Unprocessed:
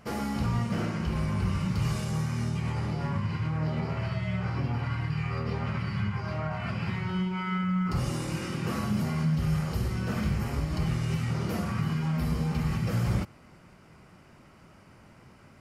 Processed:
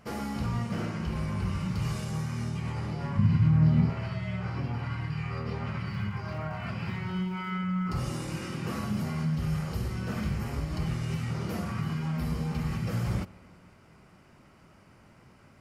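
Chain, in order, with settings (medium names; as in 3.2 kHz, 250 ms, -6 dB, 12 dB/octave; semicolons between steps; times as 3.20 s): 3.18–3.90 s: resonant low shelf 300 Hz +9.5 dB, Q 1.5; 5.85–7.56 s: crackle 150 per s -48 dBFS; reverberation RT60 2.3 s, pre-delay 55 ms, DRR 18.5 dB; trim -2.5 dB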